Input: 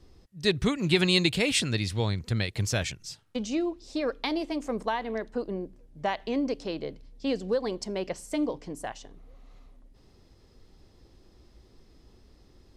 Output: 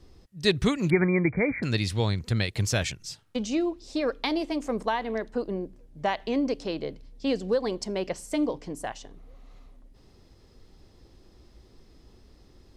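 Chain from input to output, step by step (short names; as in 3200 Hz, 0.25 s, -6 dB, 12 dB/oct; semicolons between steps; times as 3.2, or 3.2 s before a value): 0.9–1.63 brick-wall FIR low-pass 2400 Hz; gain +2 dB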